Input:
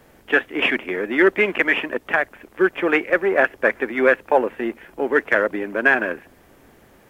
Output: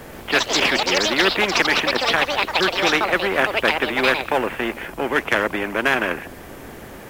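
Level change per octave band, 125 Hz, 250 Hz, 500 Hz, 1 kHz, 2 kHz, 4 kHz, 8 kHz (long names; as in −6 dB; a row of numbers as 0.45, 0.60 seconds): +6.5 dB, −1.5 dB, −2.5 dB, +4.0 dB, 0.0 dB, +13.0 dB, can't be measured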